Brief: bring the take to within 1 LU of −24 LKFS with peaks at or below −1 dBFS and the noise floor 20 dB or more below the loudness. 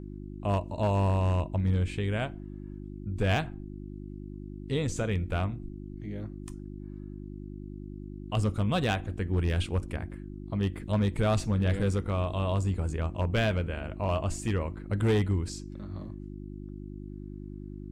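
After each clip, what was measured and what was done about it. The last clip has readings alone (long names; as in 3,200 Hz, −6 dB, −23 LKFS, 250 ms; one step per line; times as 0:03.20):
share of clipped samples 0.7%; peaks flattened at −19.5 dBFS; mains hum 50 Hz; hum harmonics up to 350 Hz; level of the hum −40 dBFS; integrated loudness −30.0 LKFS; sample peak −19.5 dBFS; target loudness −24.0 LKFS
→ clipped peaks rebuilt −19.5 dBFS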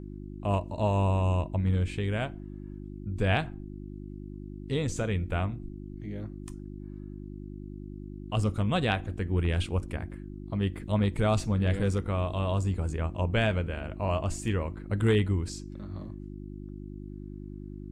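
share of clipped samples 0.0%; mains hum 50 Hz; hum harmonics up to 350 Hz; level of the hum −39 dBFS
→ hum removal 50 Hz, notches 7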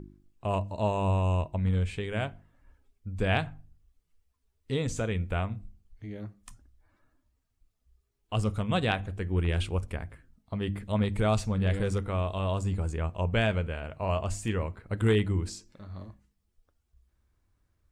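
mains hum none found; integrated loudness −30.0 LKFS; sample peak −12.0 dBFS; target loudness −24.0 LKFS
→ level +6 dB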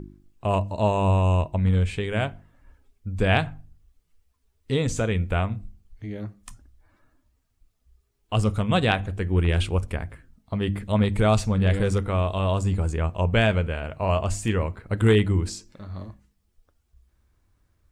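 integrated loudness −24.0 LKFS; sample peak −6.0 dBFS; background noise floor −70 dBFS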